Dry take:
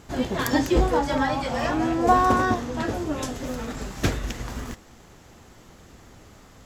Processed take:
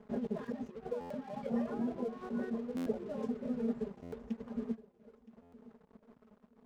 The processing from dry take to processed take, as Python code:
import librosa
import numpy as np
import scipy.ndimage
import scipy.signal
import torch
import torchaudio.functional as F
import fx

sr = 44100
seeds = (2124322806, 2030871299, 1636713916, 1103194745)

y = fx.dereverb_blind(x, sr, rt60_s=1.4)
y = y + 0.71 * np.pad(y, (int(4.9 * sr / 1000.0), 0))[:len(y)]
y = fx.over_compress(y, sr, threshold_db=-28.0, ratio=-1.0)
y = fx.double_bandpass(y, sr, hz=320.0, octaves=0.98)
y = np.sign(y) * np.maximum(np.abs(y) - 10.0 ** (-56.5 / 20.0), 0.0)
y = fx.echo_feedback(y, sr, ms=969, feedback_pct=30, wet_db=-19)
y = fx.buffer_glitch(y, sr, at_s=(1.0, 2.76, 4.02, 5.42), block=512, repeats=8)
y = y * librosa.db_to_amplitude(1.0)